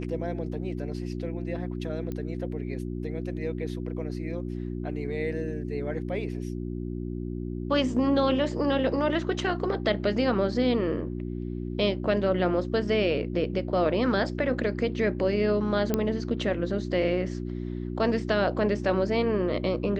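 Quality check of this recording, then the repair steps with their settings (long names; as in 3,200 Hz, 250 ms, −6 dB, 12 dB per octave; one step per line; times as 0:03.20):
mains hum 60 Hz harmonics 6 −33 dBFS
0:02.12: click −22 dBFS
0:15.94: click −11 dBFS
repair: click removal
hum removal 60 Hz, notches 6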